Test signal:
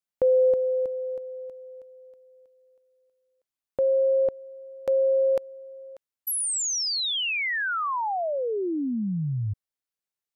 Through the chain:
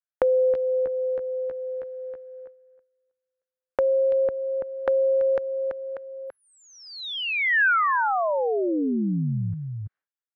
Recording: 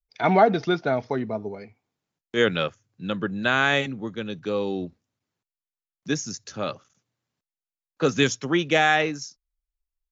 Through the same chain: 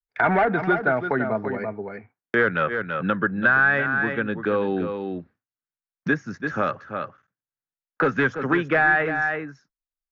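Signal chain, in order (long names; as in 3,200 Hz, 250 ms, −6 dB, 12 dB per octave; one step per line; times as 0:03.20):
gain into a clipping stage and back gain 15.5 dB
low-pass with resonance 1,600 Hz, resonance Q 3.4
downward expander −46 dBFS, range −33 dB
on a send: single-tap delay 334 ms −10.5 dB
on the sum: multiband upward and downward compressor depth 70%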